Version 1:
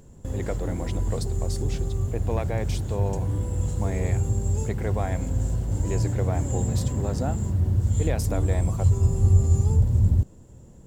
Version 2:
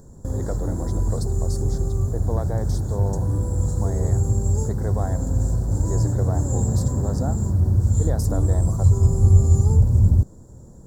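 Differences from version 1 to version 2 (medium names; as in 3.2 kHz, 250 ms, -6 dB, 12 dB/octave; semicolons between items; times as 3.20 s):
background +4.0 dB; master: add Butterworth band-stop 2.6 kHz, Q 0.91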